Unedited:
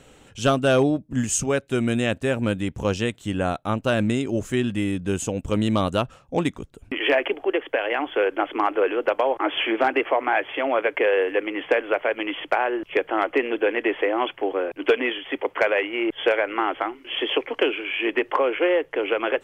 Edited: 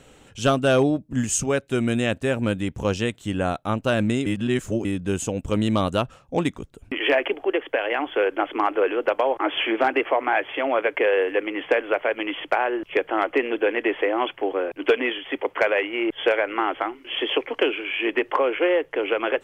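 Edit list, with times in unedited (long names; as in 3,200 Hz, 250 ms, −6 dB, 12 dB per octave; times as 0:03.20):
0:04.26–0:04.85: reverse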